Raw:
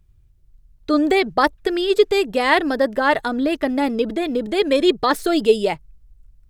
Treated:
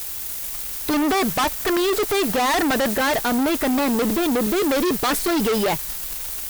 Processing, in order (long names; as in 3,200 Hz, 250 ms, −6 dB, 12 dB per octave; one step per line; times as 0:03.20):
background noise violet −35 dBFS
0:01.02–0:02.91: flat-topped bell 1,100 Hz +9 dB
fuzz pedal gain 34 dB, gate −35 dBFS
level −5 dB